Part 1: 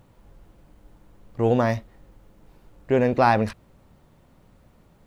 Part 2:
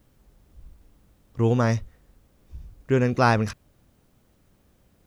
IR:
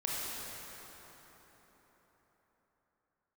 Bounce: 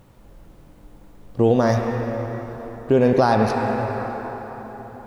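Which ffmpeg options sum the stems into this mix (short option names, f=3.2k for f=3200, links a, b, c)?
-filter_complex "[0:a]volume=0dB,asplit=2[a][b];[b]volume=-5dB[c];[1:a]highpass=130,volume=1.5dB[d];[2:a]atrim=start_sample=2205[e];[c][e]afir=irnorm=-1:irlink=0[f];[a][d][f]amix=inputs=3:normalize=0,alimiter=limit=-6.5dB:level=0:latency=1:release=237"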